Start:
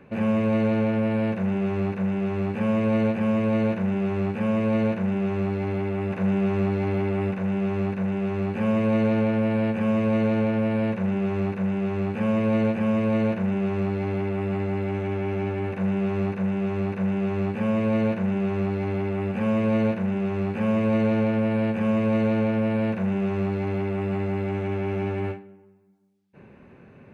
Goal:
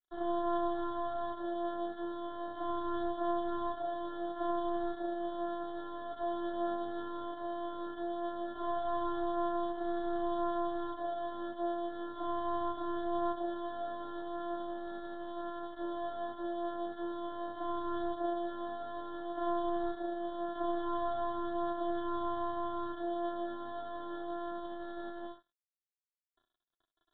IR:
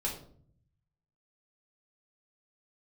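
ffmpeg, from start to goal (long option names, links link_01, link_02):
-filter_complex "[0:a]aeval=exprs='val(0)*sin(2*PI*510*n/s)':channel_layout=same,acrossover=split=240[link_01][link_02];[link_02]crystalizer=i=2:c=0[link_03];[link_01][link_03]amix=inputs=2:normalize=0,afftfilt=real='hypot(re,im)*cos(PI*b)':imag='0':win_size=512:overlap=0.75,aresample=11025,aeval=exprs='sgn(val(0))*max(abs(val(0))-0.00631,0)':channel_layout=same,aresample=44100,aemphasis=mode=production:type=75kf,flanger=delay=5.3:depth=4.4:regen=-14:speed=0.2:shape=sinusoidal,aresample=8000,aresample=44100,asuperstop=centerf=2400:order=8:qfactor=1.5,volume=-4.5dB"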